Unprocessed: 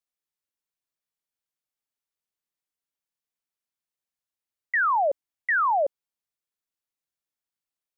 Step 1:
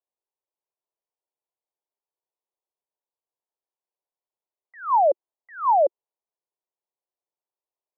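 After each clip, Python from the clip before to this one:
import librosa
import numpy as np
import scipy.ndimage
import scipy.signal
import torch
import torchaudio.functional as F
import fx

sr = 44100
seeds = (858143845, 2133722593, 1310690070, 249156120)

y = scipy.signal.sosfilt(scipy.signal.cheby1(3, 1.0, [360.0, 1000.0], 'bandpass', fs=sr, output='sos'), x)
y = y * 10.0 ** (5.5 / 20.0)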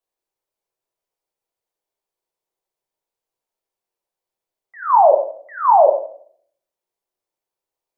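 y = fx.room_shoebox(x, sr, seeds[0], volume_m3=77.0, walls='mixed', distance_m=0.64)
y = y * 10.0 ** (5.0 / 20.0)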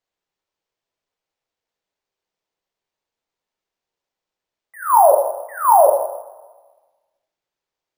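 y = fx.rev_plate(x, sr, seeds[1], rt60_s=1.3, hf_ratio=0.95, predelay_ms=0, drr_db=10.0)
y = np.repeat(y[::4], 4)[:len(y)]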